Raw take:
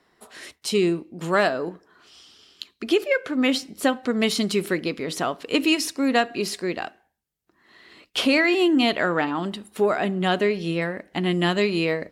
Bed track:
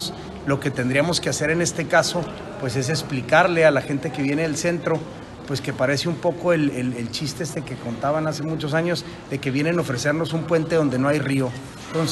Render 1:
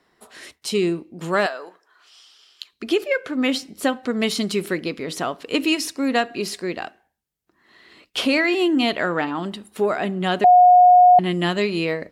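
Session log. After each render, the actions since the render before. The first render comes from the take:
0:01.46–0:02.73: high-pass filter 760 Hz
0:10.44–0:11.19: beep over 722 Hz −7.5 dBFS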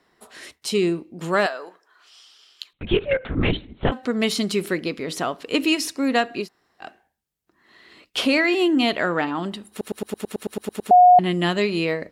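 0:02.73–0:03.92: linear-prediction vocoder at 8 kHz whisper
0:06.44–0:06.84: fill with room tone, crossfade 0.10 s
0:09.70: stutter in place 0.11 s, 11 plays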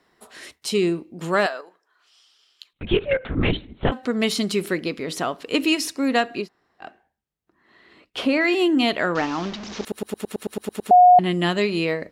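0:01.61–0:02.76: clip gain −7.5 dB
0:06.40–0:08.40: high-shelf EQ 4,800 Hz → 2,900 Hz −11.5 dB
0:09.15–0:09.85: linear delta modulator 32 kbit/s, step −28.5 dBFS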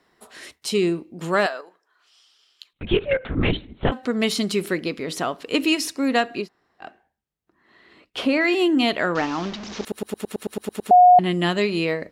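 no processing that can be heard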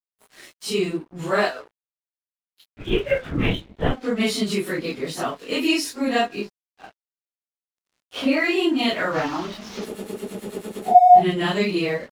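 random phases in long frames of 100 ms
dead-zone distortion −45.5 dBFS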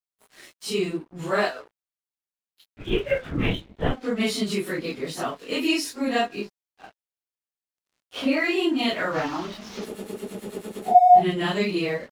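level −2.5 dB

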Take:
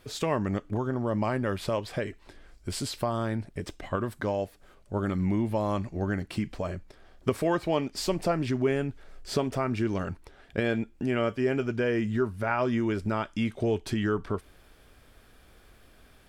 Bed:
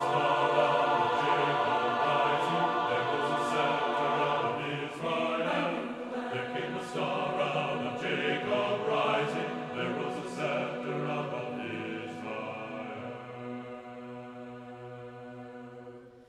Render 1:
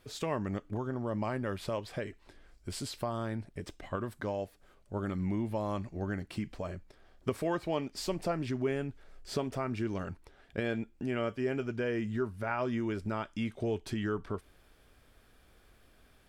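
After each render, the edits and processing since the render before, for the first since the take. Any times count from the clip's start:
level −6 dB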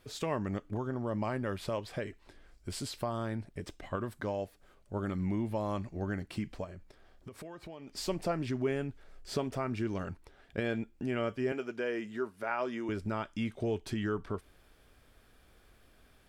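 0:06.64–0:07.88: downward compressor, threshold −43 dBFS
0:11.52–0:12.89: high-pass filter 310 Hz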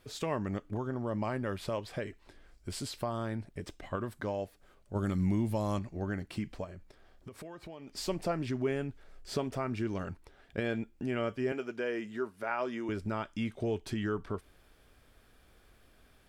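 0:04.95–0:05.79: bass and treble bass +5 dB, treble +10 dB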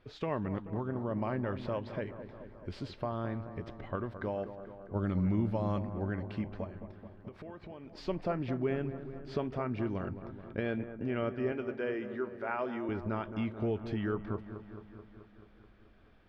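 high-frequency loss of the air 270 metres
delay with a low-pass on its return 216 ms, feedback 68%, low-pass 1,600 Hz, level −11 dB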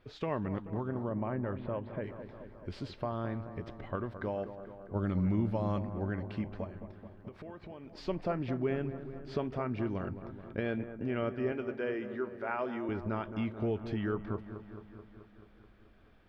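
0:01.09–0:02.04: high-frequency loss of the air 460 metres

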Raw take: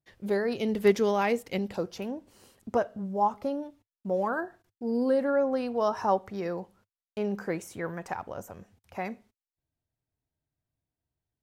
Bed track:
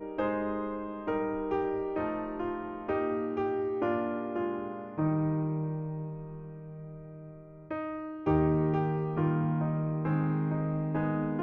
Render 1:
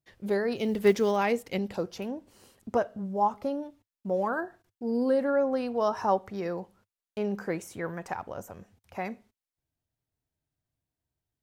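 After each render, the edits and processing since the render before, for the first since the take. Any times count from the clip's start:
0:00.56–0:01.17: one scale factor per block 7 bits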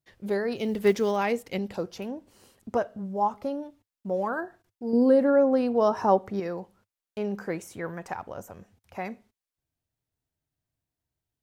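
0:04.93–0:06.40: parametric band 290 Hz +7 dB 2.7 octaves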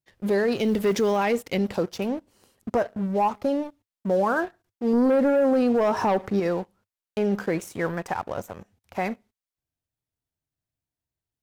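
leveller curve on the samples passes 2
brickwall limiter −15.5 dBFS, peak gain reduction 7 dB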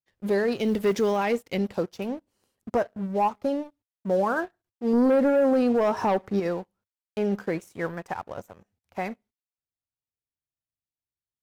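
expander for the loud parts 1.5 to 1, over −43 dBFS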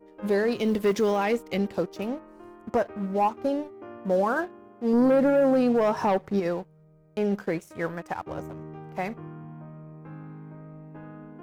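mix in bed track −13 dB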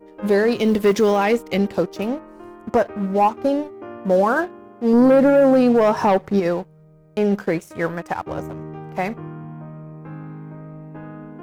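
level +7 dB

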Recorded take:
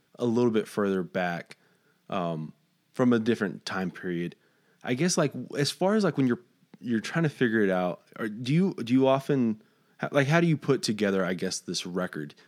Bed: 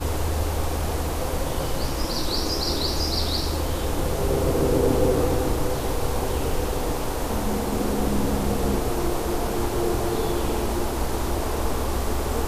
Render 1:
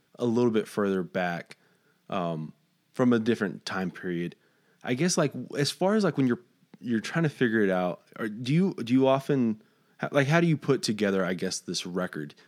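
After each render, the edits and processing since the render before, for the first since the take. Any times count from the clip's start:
no processing that can be heard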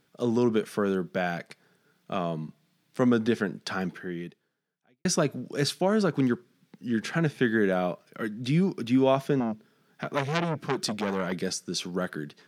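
0:03.91–0:05.05: fade out quadratic
0:06.06–0:06.98: notch filter 680 Hz, Q 5.8
0:09.40–0:11.32: saturating transformer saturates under 2,100 Hz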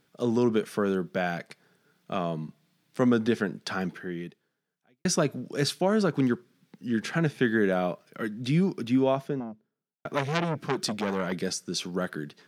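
0:08.69–0:10.05: fade out and dull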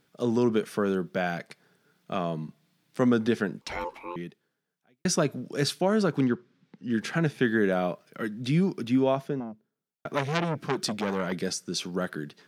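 0:03.61–0:04.16: ring modulation 700 Hz
0:06.24–0:06.90: high-frequency loss of the air 110 metres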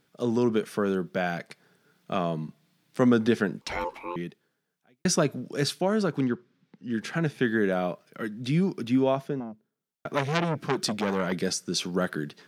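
speech leveller within 4 dB 2 s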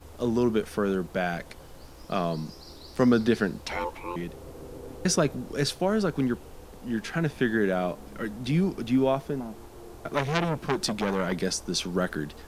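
mix in bed −21.5 dB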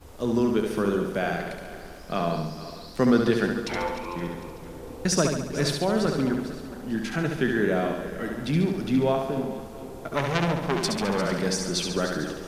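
feedback delay that plays each chunk backwards 225 ms, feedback 59%, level −12 dB
flutter between parallel walls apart 12 metres, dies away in 0.82 s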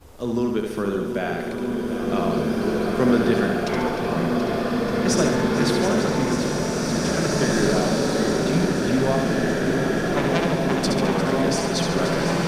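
on a send: feedback echo with a long and a short gap by turns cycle 1,217 ms, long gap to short 1.5 to 1, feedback 66%, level −10 dB
on the sum: slow-attack reverb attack 2,350 ms, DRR −2.5 dB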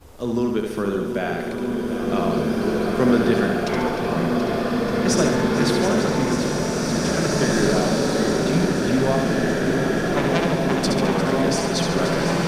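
level +1 dB

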